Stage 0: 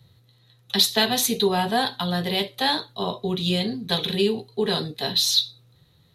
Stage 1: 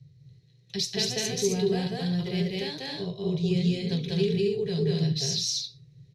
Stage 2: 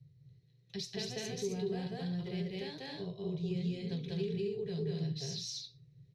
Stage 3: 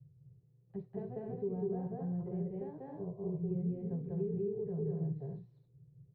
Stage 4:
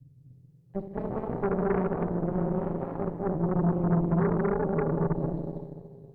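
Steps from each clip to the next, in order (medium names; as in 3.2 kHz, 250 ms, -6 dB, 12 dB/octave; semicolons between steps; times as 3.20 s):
FFT filter 100 Hz 0 dB, 150 Hz +13 dB, 230 Hz -13 dB, 400 Hz -1 dB, 880 Hz -20 dB, 1.3 kHz -21 dB, 2.3 kHz -4 dB, 3.6 kHz -15 dB, 5.4 kHz +2 dB, 12 kHz -22 dB; on a send: loudspeakers at several distances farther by 67 m 0 dB, 91 m -4 dB; on the sum: trim -3.5 dB
treble shelf 3.7 kHz -8 dB; compression 1.5:1, threshold -31 dBFS, peak gain reduction 4.5 dB; trim -7 dB
low-pass 1 kHz 24 dB/octave
Schroeder reverb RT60 3.2 s, combs from 32 ms, DRR 1 dB; Chebyshev shaper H 6 -12 dB, 7 -28 dB, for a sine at -24 dBFS; trim +7 dB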